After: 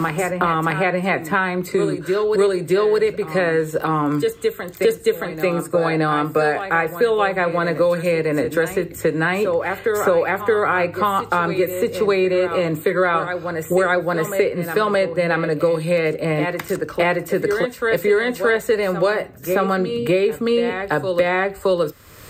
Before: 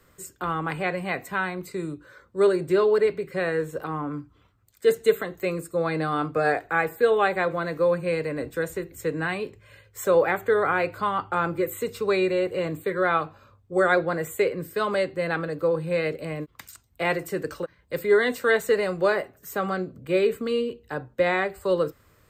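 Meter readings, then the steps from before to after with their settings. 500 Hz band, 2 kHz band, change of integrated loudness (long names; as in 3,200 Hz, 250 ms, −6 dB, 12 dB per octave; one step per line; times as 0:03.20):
+5.5 dB, +6.0 dB, +5.5 dB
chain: backwards echo 622 ms −12 dB
multiband upward and downward compressor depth 100%
level +5 dB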